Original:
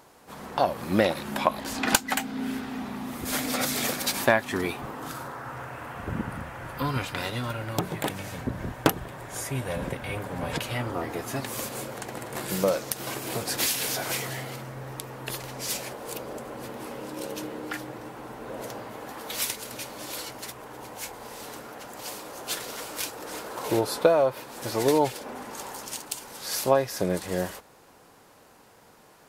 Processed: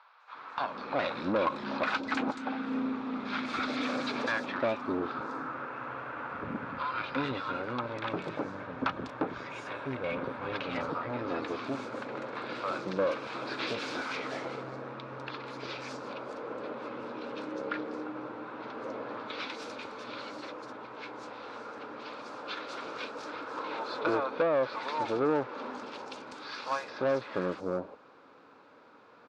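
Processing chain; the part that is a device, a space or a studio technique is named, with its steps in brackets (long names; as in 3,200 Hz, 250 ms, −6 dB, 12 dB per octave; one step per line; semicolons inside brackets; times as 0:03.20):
three-band delay without the direct sound mids, highs, lows 200/350 ms, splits 840/5,000 Hz
guitar amplifier (tube saturation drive 25 dB, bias 0.5; bass and treble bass −13 dB, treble +4 dB; loudspeaker in its box 87–3,400 Hz, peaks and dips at 270 Hz +5 dB, 380 Hz −3 dB, 720 Hz −6 dB, 1,300 Hz +4 dB, 1,900 Hz −9 dB, 3,000 Hz −9 dB)
level +4.5 dB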